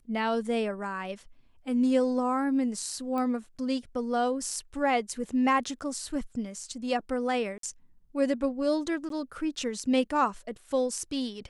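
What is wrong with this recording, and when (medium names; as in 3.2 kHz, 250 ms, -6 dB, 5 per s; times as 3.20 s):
3.18 s: pop -22 dBFS
7.58–7.63 s: dropout 53 ms
9.09–9.10 s: dropout 13 ms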